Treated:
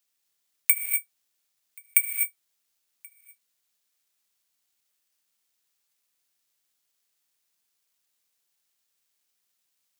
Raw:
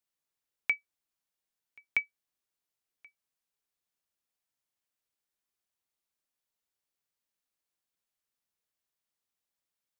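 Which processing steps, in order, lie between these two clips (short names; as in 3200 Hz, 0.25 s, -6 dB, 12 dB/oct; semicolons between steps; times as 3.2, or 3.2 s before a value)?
tilt shelf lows -9 dB; non-linear reverb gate 0.28 s rising, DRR 6 dB; careless resampling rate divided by 4×, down none, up zero stuff; HPF 100 Hz 12 dB/oct; high shelf 2000 Hz +8.5 dB; gain -10.5 dB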